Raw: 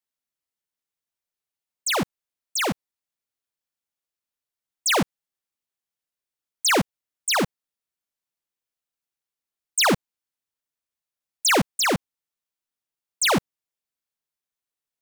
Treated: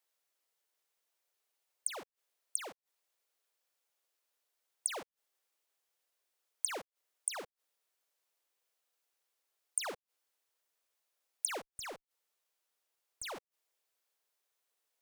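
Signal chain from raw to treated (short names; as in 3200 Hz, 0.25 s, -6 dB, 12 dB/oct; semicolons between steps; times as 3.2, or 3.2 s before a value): resonant low shelf 300 Hz -13.5 dB, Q 1.5; flipped gate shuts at -24 dBFS, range -28 dB; 11.6–13.36 tube stage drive 42 dB, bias 0.25; gain +6 dB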